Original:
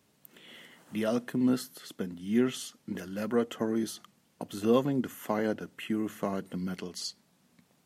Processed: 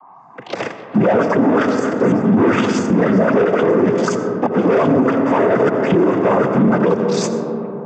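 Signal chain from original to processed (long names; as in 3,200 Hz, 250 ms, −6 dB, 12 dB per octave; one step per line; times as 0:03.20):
every frequency bin delayed by itself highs late, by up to 210 ms
graphic EQ with 10 bands 500 Hz +9 dB, 1,000 Hz +9 dB, 4,000 Hz −4 dB
leveller curve on the samples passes 5
reversed playback
downward compressor 16 to 1, threshold −28 dBFS, peak gain reduction 20 dB
reversed playback
phaser swept by the level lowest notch 540 Hz, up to 3,900 Hz, full sweep at −37 dBFS
steady tone 900 Hz −62 dBFS
cochlear-implant simulation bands 16
high-frequency loss of the air 170 metres
on a send at −9.5 dB: convolution reverb RT60 3.7 s, pre-delay 45 ms
on the sum: boost into a limiter +27 dB
level −5 dB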